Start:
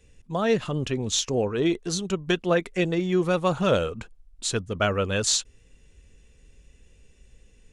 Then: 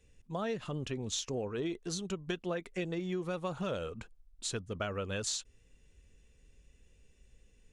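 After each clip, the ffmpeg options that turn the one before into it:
-af "acompressor=threshold=0.0631:ratio=6,volume=0.398"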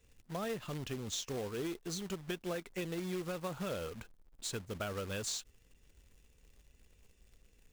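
-af "acrusher=bits=2:mode=log:mix=0:aa=0.000001,asoftclip=type=tanh:threshold=0.0631,volume=0.75"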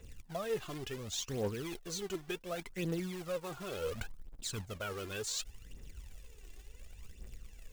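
-af "areverse,acompressor=threshold=0.00501:ratio=6,areverse,aphaser=in_gain=1:out_gain=1:delay=3:decay=0.62:speed=0.69:type=triangular,volume=2.37"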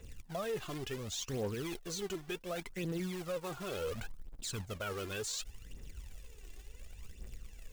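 -af "alimiter=level_in=2.24:limit=0.0631:level=0:latency=1:release=22,volume=0.447,volume=1.19"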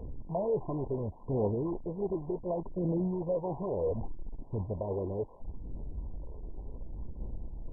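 -af "aeval=exprs='val(0)+0.5*0.00422*sgn(val(0))':c=same,volume=2" -ar 22050 -c:a mp2 -b:a 8k

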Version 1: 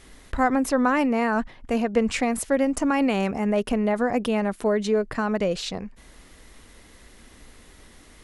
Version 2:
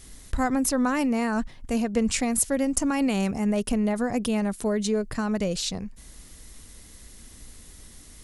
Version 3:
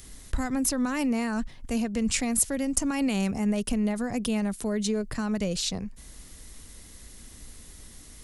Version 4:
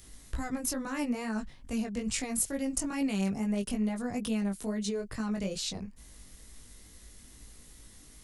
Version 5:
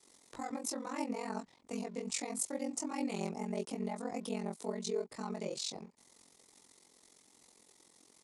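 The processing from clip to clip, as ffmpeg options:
-af "bass=f=250:g=9,treble=f=4000:g=14,volume=0.531"
-filter_complex "[0:a]acrossover=split=230|2000[s0][s1][s2];[s1]alimiter=level_in=1.06:limit=0.0631:level=0:latency=1:release=245,volume=0.944[s3];[s2]acompressor=mode=upward:threshold=0.00224:ratio=2.5[s4];[s0][s3][s4]amix=inputs=3:normalize=0"
-af "flanger=delay=18:depth=2.8:speed=2.3,volume=0.75"
-af "aeval=exprs='sgn(val(0))*max(abs(val(0))-0.00112,0)':c=same,highpass=290,equalizer=f=410:t=q:w=4:g=4,equalizer=f=860:t=q:w=4:g=6,equalizer=f=1600:t=q:w=4:g=-9,equalizer=f=2900:t=q:w=4:g=-6,lowpass=f=9500:w=0.5412,lowpass=f=9500:w=1.3066,aeval=exprs='val(0)*sin(2*PI*22*n/s)':c=same"

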